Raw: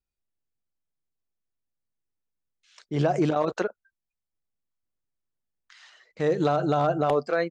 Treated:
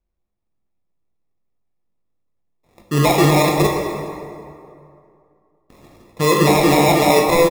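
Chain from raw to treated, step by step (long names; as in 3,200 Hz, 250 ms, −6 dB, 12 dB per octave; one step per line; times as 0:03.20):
Bessel low-pass filter 1,500 Hz, order 2
in parallel at +2 dB: brickwall limiter −22 dBFS, peak gain reduction 8.5 dB
on the sum: decimation without filtering 29×
double-tracking delay 20 ms −11 dB
dense smooth reverb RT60 2.5 s, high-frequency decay 0.6×, DRR 0.5 dB
level +3 dB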